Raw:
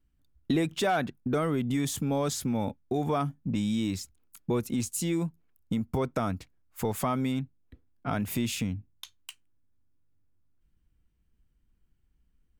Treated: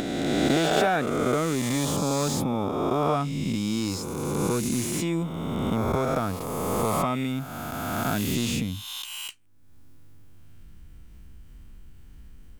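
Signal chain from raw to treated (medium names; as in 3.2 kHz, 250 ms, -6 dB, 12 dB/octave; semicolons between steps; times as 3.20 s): reverse spectral sustain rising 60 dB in 2.61 s; upward compressor, threshold -29 dBFS; slew-rate limiter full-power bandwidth 210 Hz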